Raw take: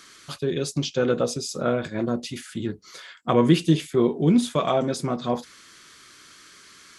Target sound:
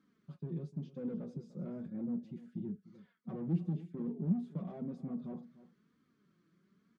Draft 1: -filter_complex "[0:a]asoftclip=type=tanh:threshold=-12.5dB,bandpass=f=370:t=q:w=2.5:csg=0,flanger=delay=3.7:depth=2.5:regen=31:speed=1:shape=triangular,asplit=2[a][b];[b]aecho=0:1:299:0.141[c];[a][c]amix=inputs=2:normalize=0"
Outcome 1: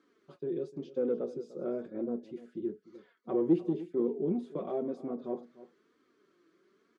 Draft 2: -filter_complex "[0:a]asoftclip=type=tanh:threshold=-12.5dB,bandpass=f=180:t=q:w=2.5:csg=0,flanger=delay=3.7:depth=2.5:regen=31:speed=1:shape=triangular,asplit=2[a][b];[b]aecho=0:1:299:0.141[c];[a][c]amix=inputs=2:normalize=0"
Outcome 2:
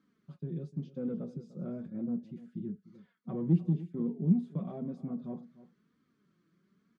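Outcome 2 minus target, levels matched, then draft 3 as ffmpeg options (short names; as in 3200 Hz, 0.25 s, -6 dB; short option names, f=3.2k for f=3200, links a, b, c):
soft clip: distortion -9 dB
-filter_complex "[0:a]asoftclip=type=tanh:threshold=-23dB,bandpass=f=180:t=q:w=2.5:csg=0,flanger=delay=3.7:depth=2.5:regen=31:speed=1:shape=triangular,asplit=2[a][b];[b]aecho=0:1:299:0.141[c];[a][c]amix=inputs=2:normalize=0"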